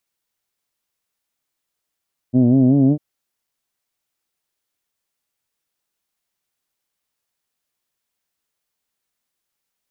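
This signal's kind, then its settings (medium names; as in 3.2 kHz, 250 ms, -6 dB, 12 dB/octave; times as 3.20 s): formant vowel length 0.65 s, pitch 121 Hz, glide +3 st, F1 260 Hz, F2 640 Hz, F3 3.1 kHz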